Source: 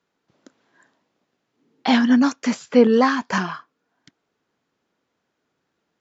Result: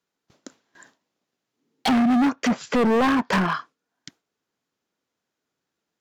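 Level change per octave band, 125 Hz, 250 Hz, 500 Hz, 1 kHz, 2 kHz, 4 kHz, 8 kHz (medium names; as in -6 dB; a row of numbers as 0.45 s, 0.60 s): +2.5 dB, -2.5 dB, -5.0 dB, 0.0 dB, -1.5 dB, -2.0 dB, no reading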